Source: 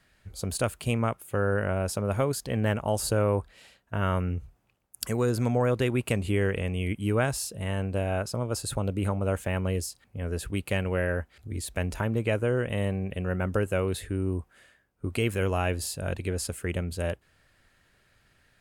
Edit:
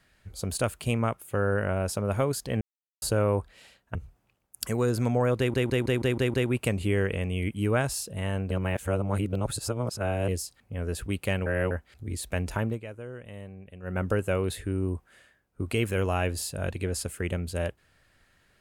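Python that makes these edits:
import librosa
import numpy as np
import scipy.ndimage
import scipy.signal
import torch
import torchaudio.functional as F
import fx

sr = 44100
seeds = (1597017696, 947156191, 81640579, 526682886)

y = fx.edit(x, sr, fx.silence(start_s=2.61, length_s=0.41),
    fx.cut(start_s=3.95, length_s=0.4),
    fx.stutter(start_s=5.78, slice_s=0.16, count=7),
    fx.reverse_span(start_s=7.95, length_s=1.77),
    fx.reverse_span(start_s=10.9, length_s=0.25),
    fx.fade_down_up(start_s=12.1, length_s=1.32, db=-14.0, fade_s=0.16), tone=tone)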